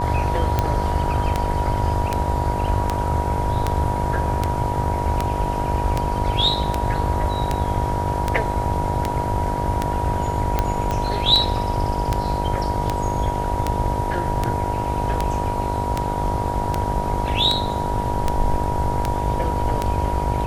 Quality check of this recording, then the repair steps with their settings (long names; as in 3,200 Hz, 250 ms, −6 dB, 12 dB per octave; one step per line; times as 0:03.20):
mains buzz 50 Hz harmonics 19 −27 dBFS
scratch tick 78 rpm −6 dBFS
whistle 960 Hz −25 dBFS
0:10.91: click −11 dBFS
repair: click removal
hum removal 50 Hz, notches 19
notch filter 960 Hz, Q 30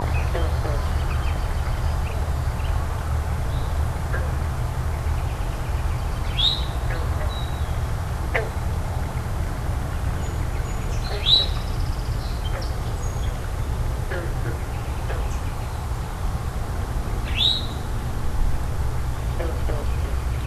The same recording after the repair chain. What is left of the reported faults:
0:10.91: click